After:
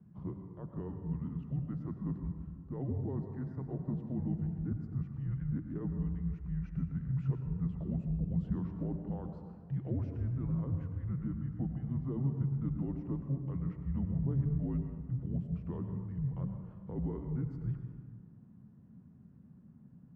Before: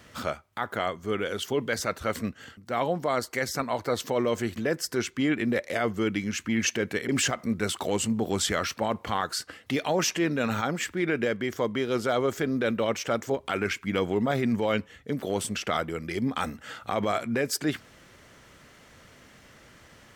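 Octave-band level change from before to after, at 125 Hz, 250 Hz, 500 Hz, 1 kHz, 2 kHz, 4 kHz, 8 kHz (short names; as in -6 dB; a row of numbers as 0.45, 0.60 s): +3.0 dB, -7.5 dB, -20.5 dB, -25.0 dB, under -30 dB, under -40 dB, under -40 dB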